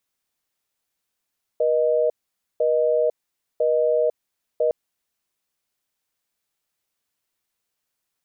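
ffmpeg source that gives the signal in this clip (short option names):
-f lavfi -i "aevalsrc='0.106*(sin(2*PI*480*t)+sin(2*PI*620*t))*clip(min(mod(t,1),0.5-mod(t,1))/0.005,0,1)':d=3.11:s=44100"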